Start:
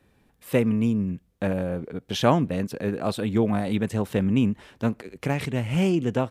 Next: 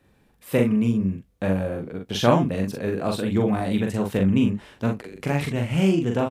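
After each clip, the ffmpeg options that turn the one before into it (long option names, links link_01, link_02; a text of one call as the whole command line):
ffmpeg -i in.wav -af "aecho=1:1:42|62:0.668|0.158" out.wav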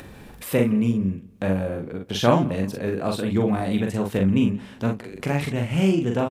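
ffmpeg -i in.wav -filter_complex "[0:a]acompressor=mode=upward:threshold=-27dB:ratio=2.5,asplit=2[link_01][link_02];[link_02]adelay=175,lowpass=frequency=4900:poles=1,volume=-22dB,asplit=2[link_03][link_04];[link_04]adelay=175,lowpass=frequency=4900:poles=1,volume=0.37,asplit=2[link_05][link_06];[link_06]adelay=175,lowpass=frequency=4900:poles=1,volume=0.37[link_07];[link_01][link_03][link_05][link_07]amix=inputs=4:normalize=0" out.wav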